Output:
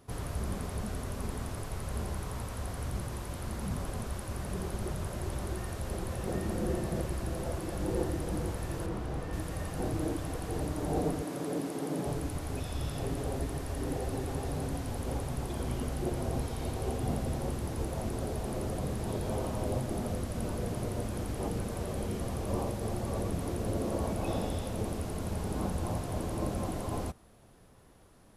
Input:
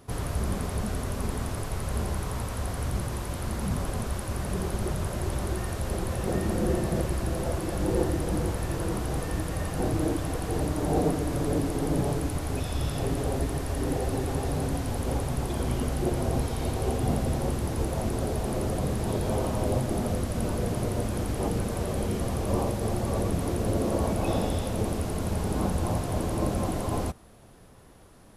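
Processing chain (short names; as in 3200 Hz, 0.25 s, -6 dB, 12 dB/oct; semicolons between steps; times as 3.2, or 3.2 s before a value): 8.86–9.33 high shelf 5100 Hz -12 dB; 11.22–12.06 HPF 160 Hz 24 dB/oct; gain -6 dB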